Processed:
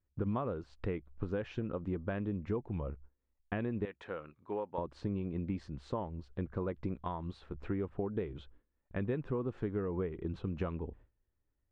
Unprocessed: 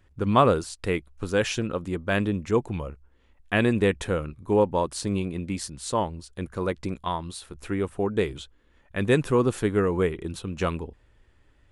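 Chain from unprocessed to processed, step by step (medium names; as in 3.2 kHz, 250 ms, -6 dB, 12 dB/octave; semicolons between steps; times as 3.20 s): gate with hold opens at -46 dBFS; 3.85–4.78 s: high-pass 1.4 kHz 6 dB/octave; compression 6:1, threshold -31 dBFS, peak gain reduction 16.5 dB; tape spacing loss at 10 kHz 44 dB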